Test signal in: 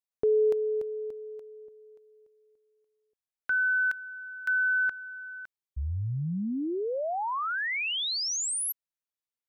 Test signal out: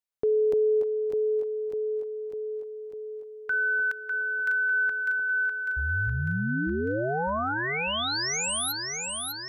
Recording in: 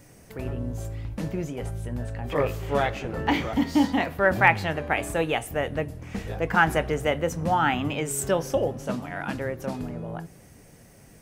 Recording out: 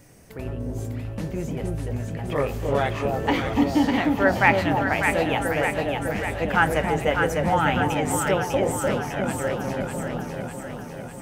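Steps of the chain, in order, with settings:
delay that swaps between a low-pass and a high-pass 300 ms, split 860 Hz, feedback 78%, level −2 dB

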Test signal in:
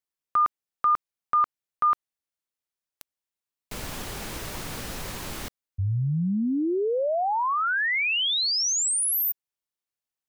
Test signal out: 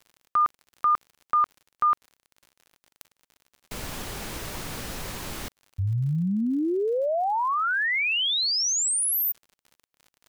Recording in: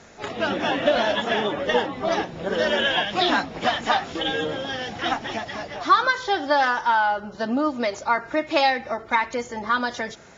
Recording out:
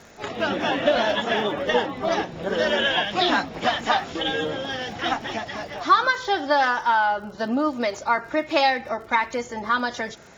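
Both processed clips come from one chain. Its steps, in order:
surface crackle 67 per second −41 dBFS

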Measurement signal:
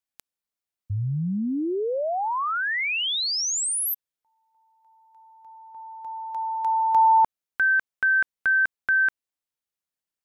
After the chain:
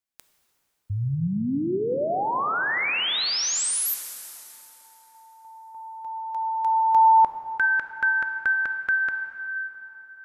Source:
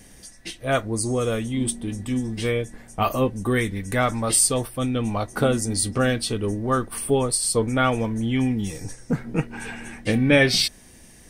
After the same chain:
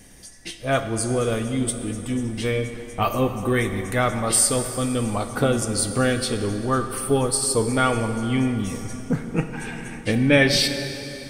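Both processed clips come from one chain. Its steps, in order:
dense smooth reverb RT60 3.7 s, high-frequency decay 0.75×, DRR 7 dB

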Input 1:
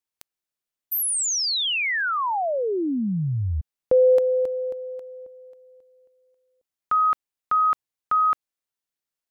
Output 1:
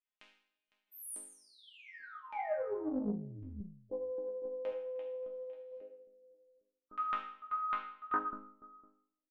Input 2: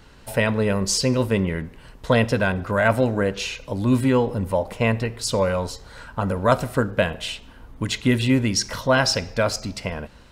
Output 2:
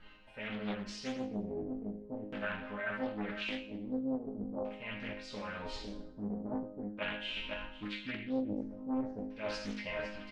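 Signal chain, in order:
spectral magnitudes quantised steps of 15 dB
automatic gain control gain up to 12 dB
sample-and-hold tremolo 3.5 Hz
on a send: single-tap delay 506 ms −18.5 dB
on the sum: auto-filter low-pass square 0.43 Hz 350–2,700 Hz
reversed playback
downward compressor 8 to 1, threshold −30 dBFS
reversed playback
resonators tuned to a chord G#3 major, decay 0.61 s
highs frequency-modulated by the lows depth 0.68 ms
level +15 dB

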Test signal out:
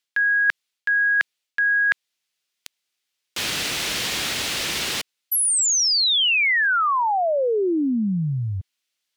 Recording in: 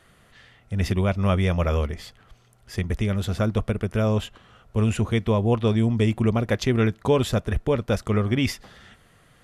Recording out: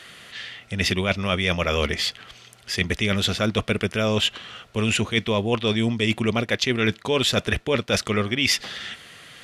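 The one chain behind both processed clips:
meter weighting curve D
reversed playback
downward compressor 10 to 1, threshold −26 dBFS
reversed playback
level +8 dB

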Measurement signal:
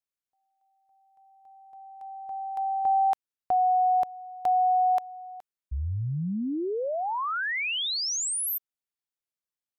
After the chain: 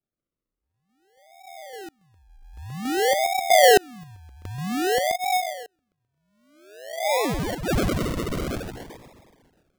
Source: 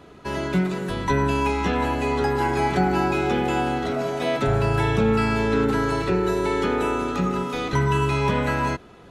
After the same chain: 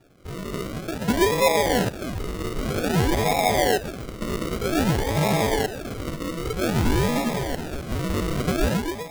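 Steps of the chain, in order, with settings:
feedback echo with a high-pass in the loop 129 ms, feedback 60%, high-pass 440 Hz, level −6 dB
auto-filter high-pass saw down 0.53 Hz 560–3,500 Hz
sample-and-hold swept by an LFO 42×, swing 60% 0.52 Hz

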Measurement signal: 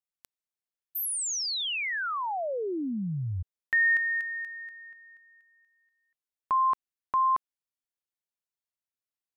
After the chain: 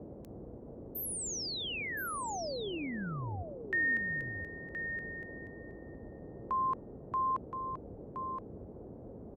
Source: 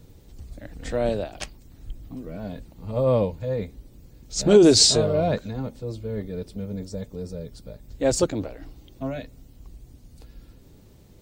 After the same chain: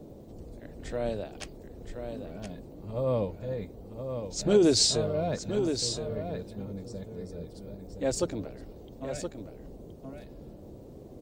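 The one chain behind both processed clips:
single-tap delay 1,021 ms −7.5 dB
noise in a band 34–510 Hz −40 dBFS
level −7.5 dB

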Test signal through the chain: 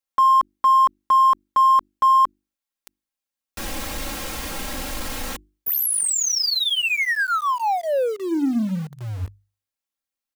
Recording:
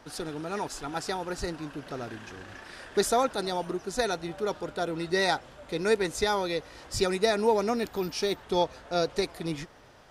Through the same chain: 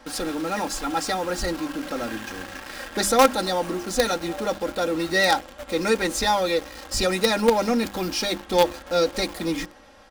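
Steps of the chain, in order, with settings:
mains-hum notches 50/100/150/200/250/300/350 Hz
comb filter 3.7 ms, depth 93%
in parallel at −11 dB: log-companded quantiser 2 bits
on the sum: level +2 dB

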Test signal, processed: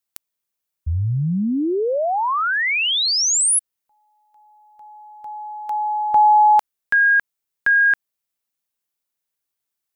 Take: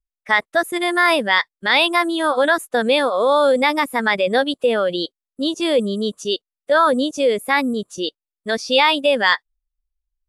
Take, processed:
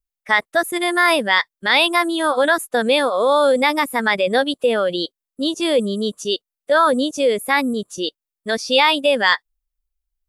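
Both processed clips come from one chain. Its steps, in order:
high-shelf EQ 9,400 Hz +7.5 dB

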